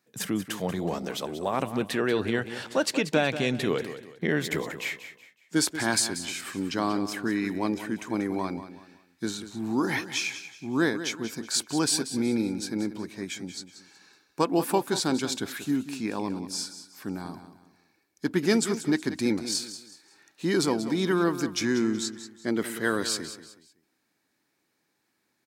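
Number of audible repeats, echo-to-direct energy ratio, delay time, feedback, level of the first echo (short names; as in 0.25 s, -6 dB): 3, -11.5 dB, 0.186 s, 33%, -12.0 dB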